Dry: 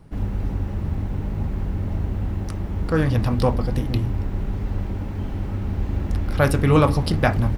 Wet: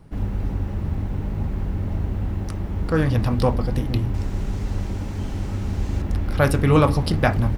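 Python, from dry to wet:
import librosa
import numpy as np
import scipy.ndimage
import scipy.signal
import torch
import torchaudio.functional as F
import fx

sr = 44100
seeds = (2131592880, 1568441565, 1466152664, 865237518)

y = fx.peak_eq(x, sr, hz=6900.0, db=12.5, octaves=1.6, at=(4.14, 6.02))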